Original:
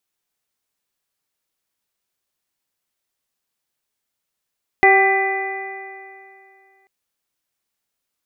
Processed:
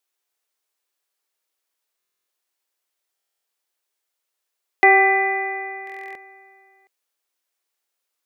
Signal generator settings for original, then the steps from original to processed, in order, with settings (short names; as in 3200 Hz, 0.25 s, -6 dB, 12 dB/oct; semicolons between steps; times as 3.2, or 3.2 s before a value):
stretched partials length 2.04 s, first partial 385 Hz, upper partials 2/-12/-15/3.5/-11 dB, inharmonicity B 0.0029, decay 2.49 s, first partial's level -14 dB
HPF 340 Hz 24 dB/oct; stuck buffer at 1.98/3.15/5.85, samples 1024, times 12